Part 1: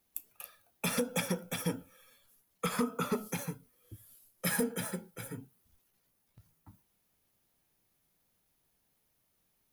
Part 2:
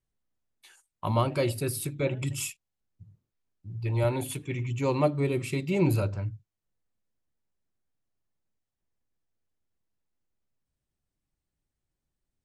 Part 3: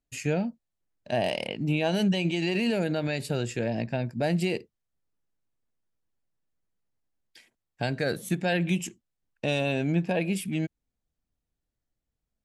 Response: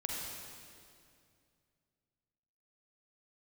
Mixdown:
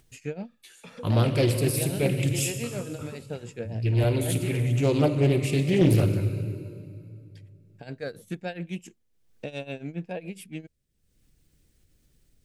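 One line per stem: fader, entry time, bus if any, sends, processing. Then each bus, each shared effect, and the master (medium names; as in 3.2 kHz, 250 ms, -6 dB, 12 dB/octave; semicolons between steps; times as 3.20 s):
-14.5 dB, 0.00 s, send -16 dB, low-pass 4.7 kHz 24 dB/octave
+2.0 dB, 0.00 s, send -4.5 dB, peaking EQ 890 Hz -14.5 dB 1.2 oct
-6.0 dB, 0.00 s, no send, tremolo 7.2 Hz, depth 87%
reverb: on, RT60 2.3 s, pre-delay 39 ms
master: peaking EQ 470 Hz +6 dB 0.31 oct; upward compressor, threshold -49 dBFS; loudspeaker Doppler distortion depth 0.41 ms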